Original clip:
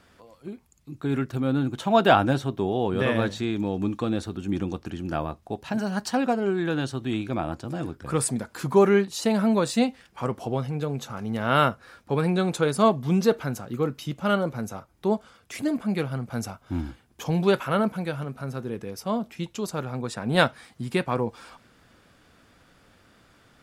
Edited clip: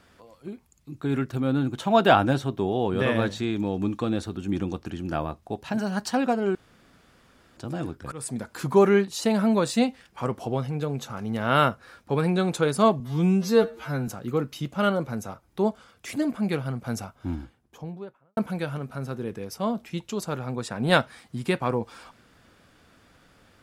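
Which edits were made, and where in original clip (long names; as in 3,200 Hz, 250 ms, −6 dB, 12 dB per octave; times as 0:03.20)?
0:06.55–0:07.57: fill with room tone
0:08.12–0:08.48: fade in, from −23 dB
0:13.00–0:13.54: time-stretch 2×
0:16.38–0:17.83: fade out and dull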